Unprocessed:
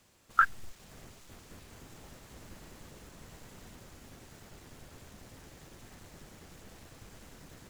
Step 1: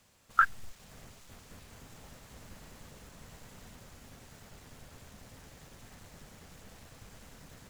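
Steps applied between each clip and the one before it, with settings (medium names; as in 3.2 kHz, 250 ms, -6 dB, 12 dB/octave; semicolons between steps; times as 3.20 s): peaking EQ 340 Hz -6.5 dB 0.43 oct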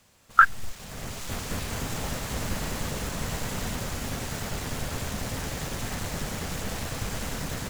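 level rider gain up to 16 dB; trim +4.5 dB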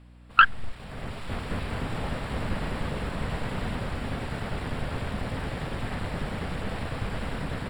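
self-modulated delay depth 0.13 ms; hum 60 Hz, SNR 22 dB; boxcar filter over 7 samples; trim +1.5 dB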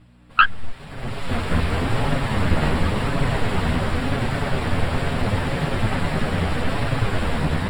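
level rider gain up to 7 dB; chorus voices 2, 0.94 Hz, delay 10 ms, depth 3 ms; trim +5.5 dB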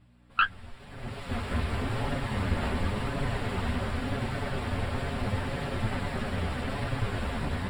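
comb of notches 160 Hz; trim -7.5 dB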